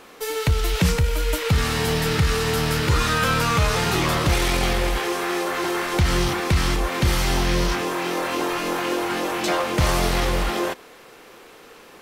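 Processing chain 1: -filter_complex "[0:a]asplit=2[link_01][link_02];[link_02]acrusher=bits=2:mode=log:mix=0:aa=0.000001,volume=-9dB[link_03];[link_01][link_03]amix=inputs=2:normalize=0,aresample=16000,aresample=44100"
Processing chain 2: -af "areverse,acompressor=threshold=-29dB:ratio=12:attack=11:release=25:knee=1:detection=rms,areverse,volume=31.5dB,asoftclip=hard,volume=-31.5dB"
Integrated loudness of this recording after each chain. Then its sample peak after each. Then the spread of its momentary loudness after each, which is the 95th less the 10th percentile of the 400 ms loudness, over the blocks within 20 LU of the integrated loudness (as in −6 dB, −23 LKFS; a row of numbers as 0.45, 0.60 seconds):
−19.5, −34.0 LKFS; −5.5, −31.5 dBFS; 5, 3 LU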